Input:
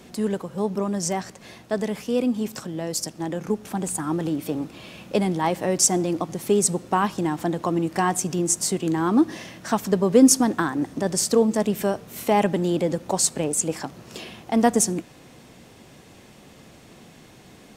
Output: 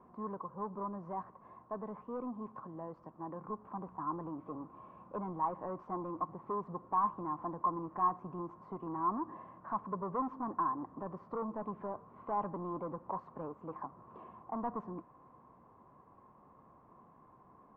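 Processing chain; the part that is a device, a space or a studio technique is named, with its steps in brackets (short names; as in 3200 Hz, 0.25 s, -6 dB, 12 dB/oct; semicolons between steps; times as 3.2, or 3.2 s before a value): overdriven synthesiser ladder filter (soft clip -20 dBFS, distortion -8 dB; ladder low-pass 1100 Hz, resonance 85%); gain -3.5 dB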